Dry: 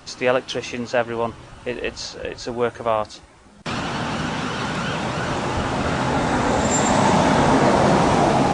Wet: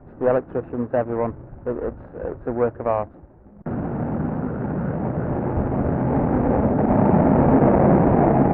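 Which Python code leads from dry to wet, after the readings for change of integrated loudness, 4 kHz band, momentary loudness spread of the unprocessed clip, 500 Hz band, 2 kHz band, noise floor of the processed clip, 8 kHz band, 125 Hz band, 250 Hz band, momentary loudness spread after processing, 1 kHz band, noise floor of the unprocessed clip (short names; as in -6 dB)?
0.0 dB, under -30 dB, 13 LU, +0.5 dB, -11.5 dB, -45 dBFS, under -40 dB, +3.5 dB, +3.0 dB, 14 LU, -4.0 dB, -46 dBFS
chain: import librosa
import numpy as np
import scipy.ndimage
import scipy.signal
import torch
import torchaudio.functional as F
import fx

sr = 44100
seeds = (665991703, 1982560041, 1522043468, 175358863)

y = scipy.signal.medfilt(x, 41)
y = scipy.signal.sosfilt(scipy.signal.butter(4, 1500.0, 'lowpass', fs=sr, output='sos'), y)
y = y * 10.0 ** (3.5 / 20.0)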